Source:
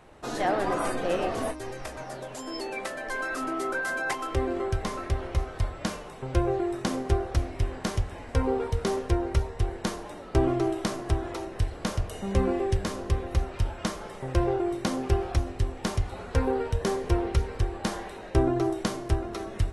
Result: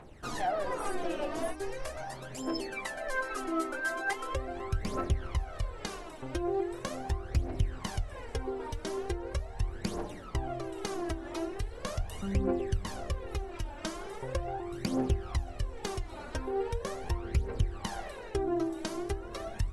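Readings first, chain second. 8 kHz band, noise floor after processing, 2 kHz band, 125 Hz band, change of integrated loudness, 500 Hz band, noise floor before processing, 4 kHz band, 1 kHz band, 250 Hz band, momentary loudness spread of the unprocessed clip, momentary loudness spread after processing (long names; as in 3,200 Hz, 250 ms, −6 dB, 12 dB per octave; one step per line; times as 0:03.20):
−4.5 dB, −45 dBFS, −4.0 dB, −6.5 dB, −6.0 dB, −6.5 dB, −42 dBFS, −4.5 dB, −5.5 dB, −6.0 dB, 8 LU, 7 LU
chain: downward compressor 6 to 1, threshold −28 dBFS, peak gain reduction 11.5 dB
phase shifter 0.4 Hz, delay 3.5 ms, feedback 67%
level −4.5 dB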